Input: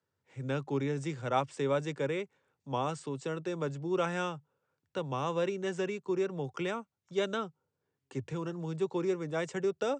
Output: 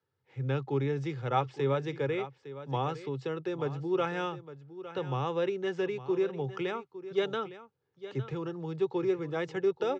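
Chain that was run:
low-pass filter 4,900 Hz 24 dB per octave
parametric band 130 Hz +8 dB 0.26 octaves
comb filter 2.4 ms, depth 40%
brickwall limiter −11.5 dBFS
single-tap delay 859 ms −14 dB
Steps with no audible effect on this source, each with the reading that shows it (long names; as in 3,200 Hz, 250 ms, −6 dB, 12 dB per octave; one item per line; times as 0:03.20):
brickwall limiter −11.5 dBFS: peak of its input −14.5 dBFS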